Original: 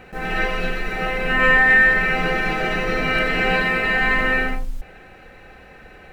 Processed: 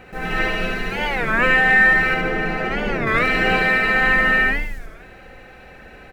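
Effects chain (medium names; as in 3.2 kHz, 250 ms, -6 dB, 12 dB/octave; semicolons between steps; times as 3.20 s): 2.14–3.09 s: treble shelf 2.1 kHz -10 dB; on a send: feedback delay 71 ms, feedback 53%, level -4 dB; on the sum: warped record 33 1/3 rpm, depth 250 cents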